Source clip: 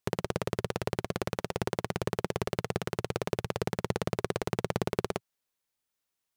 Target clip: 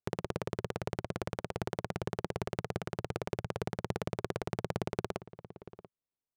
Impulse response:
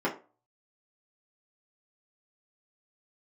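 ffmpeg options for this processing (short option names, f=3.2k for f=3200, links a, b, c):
-af "aecho=1:1:687:0.188,adynamicsmooth=sensitivity=2.5:basefreq=850,volume=-4.5dB"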